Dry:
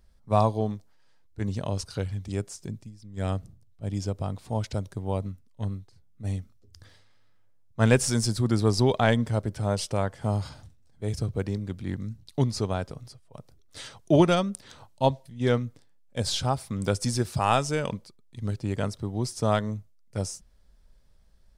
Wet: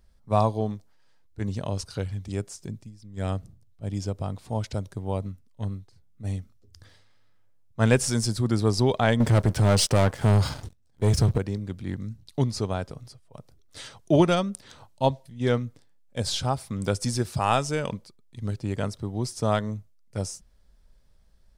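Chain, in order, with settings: 9.20–11.38 s: waveshaping leveller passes 3

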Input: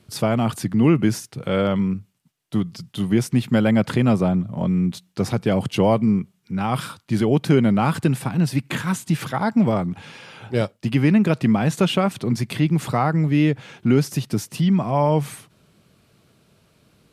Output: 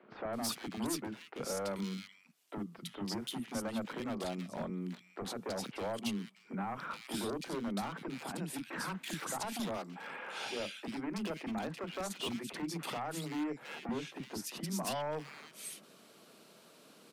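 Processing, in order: compression 16:1, threshold -30 dBFS, peak gain reduction 19.5 dB; high-pass 230 Hz 24 dB/octave; peak limiter -28.5 dBFS, peak gain reduction 9.5 dB; 9.74–10.57 s: bass shelf 380 Hz -8 dB; wavefolder -33 dBFS; three bands offset in time mids, lows, highs 30/330 ms, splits 300/2100 Hz; trim +3 dB

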